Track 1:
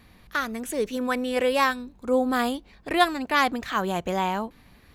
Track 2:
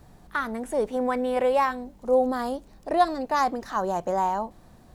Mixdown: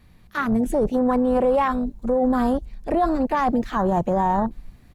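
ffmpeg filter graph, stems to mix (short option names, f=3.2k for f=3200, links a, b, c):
-filter_complex "[0:a]volume=-5.5dB[a];[1:a]dynaudnorm=f=260:g=3:m=6dB,afwtdn=0.0562,bass=f=250:g=9,treble=f=4k:g=7,adelay=8.6,volume=-0.5dB,asplit=2[b][c];[c]apad=whole_len=217995[d];[a][d]sidechaincompress=threshold=-24dB:ratio=8:attack=8.2:release=166[e];[e][b]amix=inputs=2:normalize=0,lowshelf=f=210:g=6,alimiter=limit=-13dB:level=0:latency=1:release=12"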